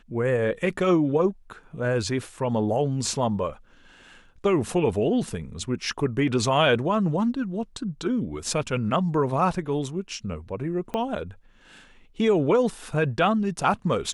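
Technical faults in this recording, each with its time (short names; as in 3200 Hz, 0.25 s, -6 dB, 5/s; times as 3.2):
10.94 pop -16 dBFS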